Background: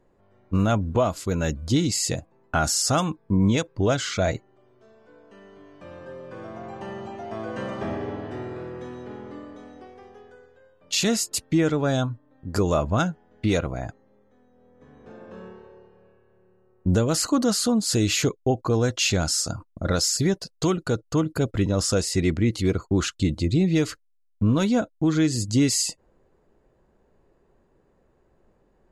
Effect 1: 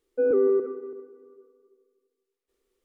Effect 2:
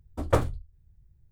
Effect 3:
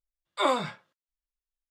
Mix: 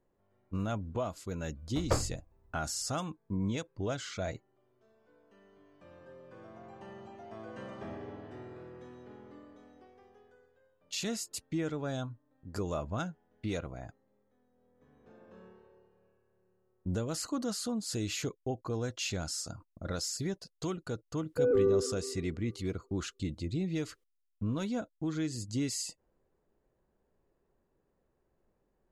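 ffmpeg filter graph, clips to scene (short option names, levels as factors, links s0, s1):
-filter_complex "[0:a]volume=0.224[s0];[2:a]atrim=end=1.31,asetpts=PTS-STARTPTS,volume=0.447,afade=t=in:d=0.004:c=hsin,afade=t=out:st=1.306:d=0.004:c=hsin,adelay=1580[s1];[1:a]atrim=end=2.84,asetpts=PTS-STARTPTS,volume=0.562,afade=t=in:d=0.004:c=hsin,afade=t=out:st=2.836:d=0.004:c=hsin,adelay=21200[s2];[s0][s1][s2]amix=inputs=3:normalize=0"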